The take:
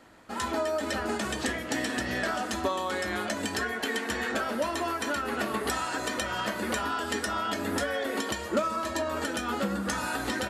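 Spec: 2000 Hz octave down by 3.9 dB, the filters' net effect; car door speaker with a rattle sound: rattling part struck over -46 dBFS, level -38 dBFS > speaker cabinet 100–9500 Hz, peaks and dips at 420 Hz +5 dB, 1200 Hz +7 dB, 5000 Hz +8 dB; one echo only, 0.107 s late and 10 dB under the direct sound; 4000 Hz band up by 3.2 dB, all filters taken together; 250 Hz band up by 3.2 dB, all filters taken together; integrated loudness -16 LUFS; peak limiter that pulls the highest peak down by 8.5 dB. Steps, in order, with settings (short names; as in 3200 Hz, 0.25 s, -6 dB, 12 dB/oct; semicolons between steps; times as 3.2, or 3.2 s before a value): bell 250 Hz +3.5 dB; bell 2000 Hz -7.5 dB; bell 4000 Hz +3 dB; limiter -23 dBFS; echo 0.107 s -10 dB; rattling part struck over -46 dBFS, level -38 dBFS; speaker cabinet 100–9500 Hz, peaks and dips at 420 Hz +5 dB, 1200 Hz +7 dB, 5000 Hz +8 dB; gain +14 dB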